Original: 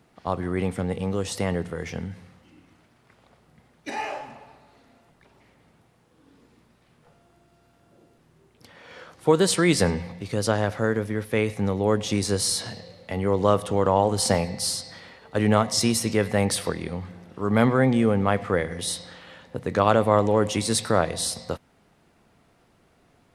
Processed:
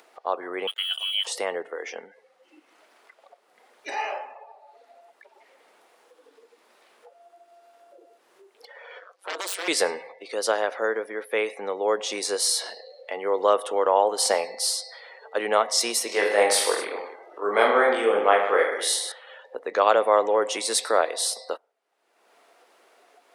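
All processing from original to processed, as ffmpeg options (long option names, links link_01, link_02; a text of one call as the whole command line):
ffmpeg -i in.wav -filter_complex "[0:a]asettb=1/sr,asplit=3[link_01][link_02][link_03];[link_01]atrim=end=0.674[link_04];[link_02]atrim=start=0.67:end=1.27,asetpts=PTS-STARTPTS,afade=type=in:duration=0.004:curve=qsin,afade=type=out:start_time=0.596:duration=0.004:curve=qsin,highpass=frequency=210:width=0.5412,highpass=frequency=210:width=1.3066,lowpass=frequency=3000:width_type=q:width=0.5098,lowpass=frequency=3000:width_type=q:width=0.6013,lowpass=frequency=3000:width_type=q:width=0.9,lowpass=frequency=3000:width_type=q:width=2.563,afreqshift=-3500,aeval=exprs='val(0)*gte(abs(val(0)),0.0158)':channel_layout=same[link_05];[link_03]atrim=start=1.266[link_06];[link_04][link_05]acrossfade=duration=0.004:curve1=hsin:curve2=qsin[link_07];[link_07][link_06]acrossfade=duration=0.004:curve1=qsin:curve2=hsin,asettb=1/sr,asplit=3[link_08][link_09][link_10];[link_08]atrim=end=8.994[link_11];[link_09]atrim=start=8.99:end=9.68,asetpts=PTS-STARTPTS,afade=type=in:duration=0.004:curve=qsin,afade=type=out:start_time=0.686:duration=0.004:curve=qsin,highpass=frequency=260:poles=1,aeval=exprs='0.0708*(abs(mod(val(0)/0.0708+3,4)-2)-1)':channel_layout=same,tremolo=f=190:d=0.919[link_12];[link_10]atrim=start=9.676[link_13];[link_11][link_12]acrossfade=duration=0.004:curve1=hsin:curve2=qsin[link_14];[link_14][link_13]acrossfade=duration=0.004:curve1=qsin:curve2=hsin,asettb=1/sr,asplit=3[link_15][link_16][link_17];[link_15]atrim=end=16.074[link_18];[link_16]atrim=start=16.07:end=19.12,asetpts=PTS-STARTPTS,afade=type=in:duration=0.004:curve=qsin,afade=type=out:start_time=3.046:duration=0.004:curve=qsin,highpass=240,aecho=1:1:20|44|72.8|107.4|148.8|198.6|258.3:0.794|0.631|0.501|0.398|0.316|0.251|0.2,atrim=end_sample=134505[link_19];[link_17]atrim=start=19.116[link_20];[link_18][link_19]acrossfade=duration=0.004:curve1=hsin:curve2=qsin[link_21];[link_21][link_20]acrossfade=duration=0.004:curve1=qsin:curve2=hsin,highpass=frequency=420:width=0.5412,highpass=frequency=420:width=1.3066,afftdn=noise_reduction=19:noise_floor=-48,acompressor=mode=upward:threshold=-40dB:ratio=2.5,volume=1.5dB" out.wav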